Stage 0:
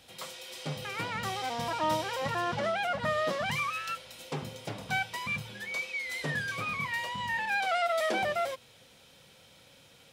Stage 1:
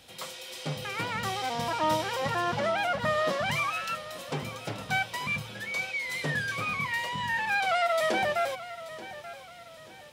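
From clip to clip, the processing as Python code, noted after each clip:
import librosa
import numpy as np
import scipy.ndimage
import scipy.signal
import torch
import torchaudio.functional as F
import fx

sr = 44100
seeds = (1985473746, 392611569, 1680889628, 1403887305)

y = fx.echo_feedback(x, sr, ms=882, feedback_pct=39, wet_db=-15)
y = y * 10.0 ** (2.5 / 20.0)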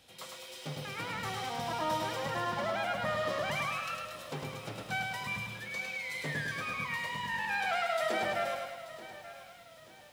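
y = fx.echo_crushed(x, sr, ms=105, feedback_pct=55, bits=9, wet_db=-3.5)
y = y * 10.0 ** (-7.0 / 20.0)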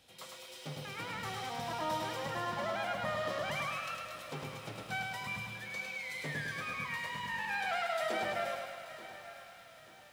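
y = fx.echo_thinned(x, sr, ms=230, feedback_pct=78, hz=360.0, wet_db=-15)
y = y * 10.0 ** (-3.0 / 20.0)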